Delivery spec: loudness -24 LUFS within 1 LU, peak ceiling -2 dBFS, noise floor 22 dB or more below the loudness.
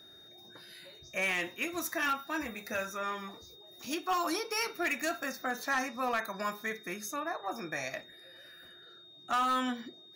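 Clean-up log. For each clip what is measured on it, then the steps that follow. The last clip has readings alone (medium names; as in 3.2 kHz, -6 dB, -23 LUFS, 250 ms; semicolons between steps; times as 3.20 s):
clipped samples 0.7%; clipping level -25.0 dBFS; steady tone 3.7 kHz; tone level -53 dBFS; loudness -34.0 LUFS; peak level -25.0 dBFS; loudness target -24.0 LUFS
-> clip repair -25 dBFS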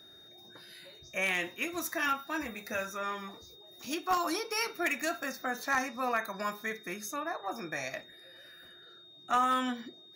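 clipped samples 0.0%; steady tone 3.7 kHz; tone level -53 dBFS
-> band-stop 3.7 kHz, Q 30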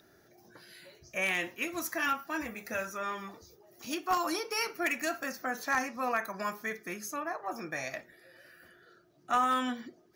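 steady tone not found; loudness -33.0 LUFS; peak level -16.0 dBFS; loudness target -24.0 LUFS
-> trim +9 dB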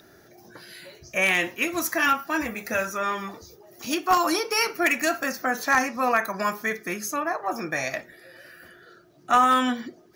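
loudness -24.0 LUFS; peak level -7.0 dBFS; noise floor -54 dBFS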